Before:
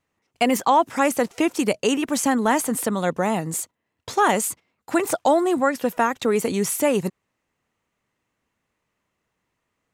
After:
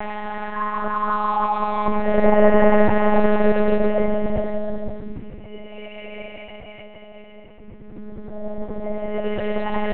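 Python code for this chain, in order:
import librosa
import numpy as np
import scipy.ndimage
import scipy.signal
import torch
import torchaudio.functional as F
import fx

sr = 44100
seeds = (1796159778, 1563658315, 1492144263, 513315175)

y = fx.reverse_delay_fb(x, sr, ms=217, feedback_pct=60, wet_db=-5.5)
y = fx.paulstretch(y, sr, seeds[0], factor=38.0, window_s=0.05, from_s=1.13)
y = fx.env_lowpass(y, sr, base_hz=1800.0, full_db=-12.0)
y = fx.noise_reduce_blind(y, sr, reduce_db=10)
y = fx.lpc_monotone(y, sr, seeds[1], pitch_hz=210.0, order=8)
y = y * librosa.db_to_amplitude(3.0)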